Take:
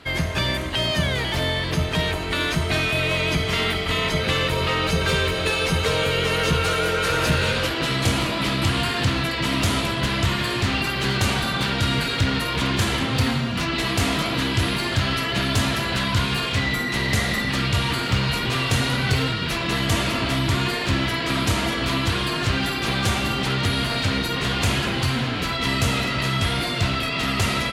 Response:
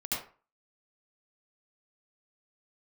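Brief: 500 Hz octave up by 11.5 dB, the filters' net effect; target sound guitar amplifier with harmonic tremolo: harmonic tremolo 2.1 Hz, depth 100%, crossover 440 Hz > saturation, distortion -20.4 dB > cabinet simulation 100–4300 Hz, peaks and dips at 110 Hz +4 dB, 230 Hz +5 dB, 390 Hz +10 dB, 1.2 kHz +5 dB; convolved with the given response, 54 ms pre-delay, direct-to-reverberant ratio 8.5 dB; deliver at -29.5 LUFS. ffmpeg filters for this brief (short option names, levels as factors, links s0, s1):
-filter_complex "[0:a]equalizer=f=500:t=o:g=8.5,asplit=2[s0][s1];[1:a]atrim=start_sample=2205,adelay=54[s2];[s1][s2]afir=irnorm=-1:irlink=0,volume=0.211[s3];[s0][s3]amix=inputs=2:normalize=0,acrossover=split=440[s4][s5];[s4]aeval=exprs='val(0)*(1-1/2+1/2*cos(2*PI*2.1*n/s))':c=same[s6];[s5]aeval=exprs='val(0)*(1-1/2-1/2*cos(2*PI*2.1*n/s))':c=same[s7];[s6][s7]amix=inputs=2:normalize=0,asoftclip=threshold=0.168,highpass=100,equalizer=f=110:t=q:w=4:g=4,equalizer=f=230:t=q:w=4:g=5,equalizer=f=390:t=q:w=4:g=10,equalizer=f=1200:t=q:w=4:g=5,lowpass=f=4300:w=0.5412,lowpass=f=4300:w=1.3066,volume=0.501"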